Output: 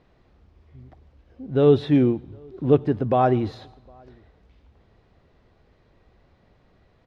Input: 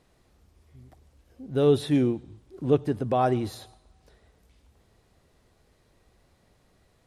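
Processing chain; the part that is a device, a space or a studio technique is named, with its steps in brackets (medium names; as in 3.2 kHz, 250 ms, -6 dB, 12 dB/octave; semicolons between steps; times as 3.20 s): shout across a valley (distance through air 220 m; echo from a far wall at 130 m, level -30 dB); trim +5 dB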